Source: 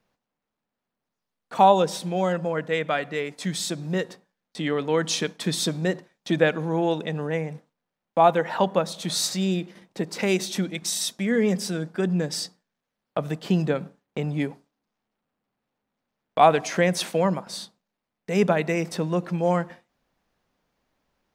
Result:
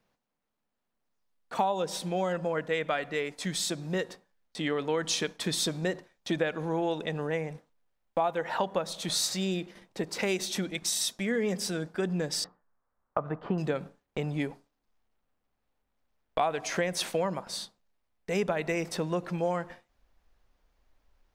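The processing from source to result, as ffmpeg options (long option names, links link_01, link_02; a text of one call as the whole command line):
ffmpeg -i in.wav -filter_complex "[0:a]asettb=1/sr,asplit=3[link_01][link_02][link_03];[link_01]atrim=end=12.444[link_04];[link_02]atrim=start=12.44:end=13.58,asetpts=PTS-STARTPTS,afade=type=in:duration=0.004:curve=qsin,afade=type=out:start_time=1.136:duration=0.004:curve=qsin,lowpass=frequency=1200:width_type=q:width=2.5[link_05];[link_03]atrim=start=13.576[link_06];[link_04][link_05]acrossfade=duration=0.004:curve1=hsin:curve2=qsin[link_07];[link_07][link_06]acrossfade=duration=0.004:curve1=qsin:curve2=hsin,asubboost=boost=10:cutoff=52,acompressor=threshold=-23dB:ratio=6,volume=-1.5dB" out.wav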